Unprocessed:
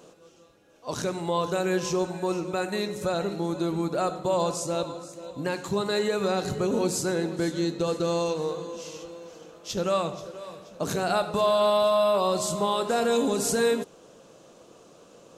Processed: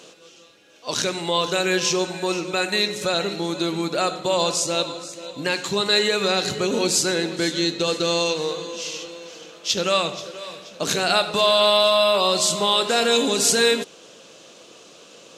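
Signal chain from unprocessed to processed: frequency weighting D; trim +3.5 dB

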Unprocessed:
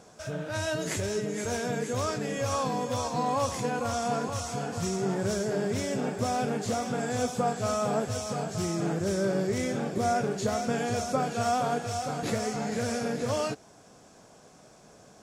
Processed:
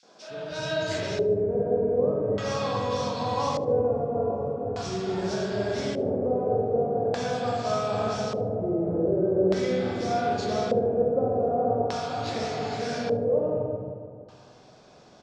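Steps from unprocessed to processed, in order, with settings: three bands offset in time highs, mids, lows 30/310 ms, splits 190/2000 Hz; spring tank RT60 1.8 s, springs 45/53/59 ms, chirp 40 ms, DRR -4 dB; LFO low-pass square 0.42 Hz 500–4500 Hz; on a send: feedback delay 75 ms, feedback 40%, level -22.5 dB; on the sum: trim -3.5 dB

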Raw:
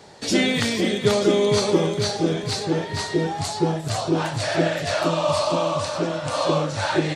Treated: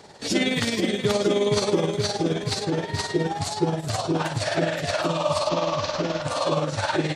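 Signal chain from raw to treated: 5.49–6.22 s: one-bit delta coder 32 kbps, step -26 dBFS; in parallel at -2 dB: peak limiter -17 dBFS, peak gain reduction 10.5 dB; on the sum: tremolo 19 Hz, depth 52%; trim -3.5 dB

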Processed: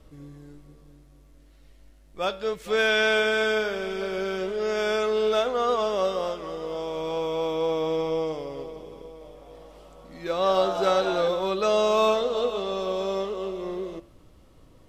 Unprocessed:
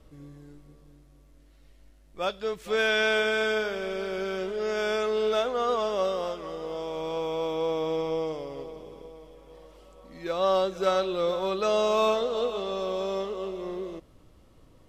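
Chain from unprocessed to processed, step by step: de-hum 114.4 Hz, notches 27; 9.01–11.28 s: frequency-shifting echo 199 ms, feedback 48%, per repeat +110 Hz, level -8.5 dB; trim +2.5 dB

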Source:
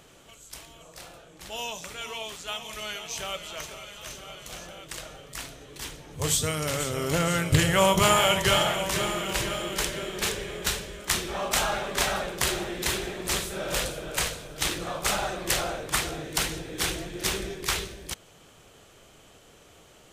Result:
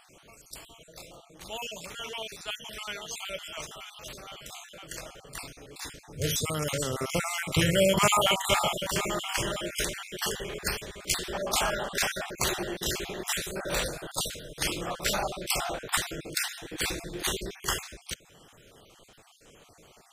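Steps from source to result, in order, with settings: random holes in the spectrogram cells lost 40%; peaking EQ 65 Hz -3.5 dB 0.8 oct

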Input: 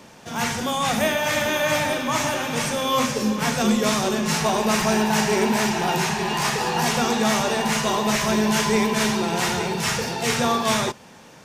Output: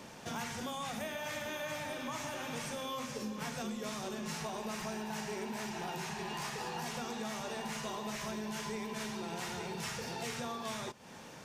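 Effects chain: compression 10:1, threshold -33 dBFS, peak gain reduction 17.5 dB; trim -4 dB

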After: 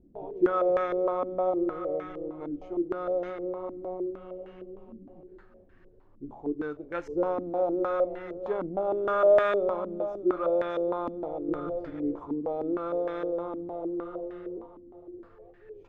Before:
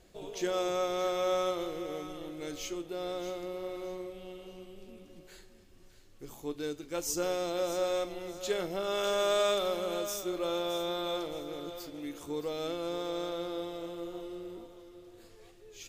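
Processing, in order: 11.48–12.20 s: bass shelf 370 Hz +9.5 dB; step-sequenced low-pass 6.5 Hz 270–1700 Hz

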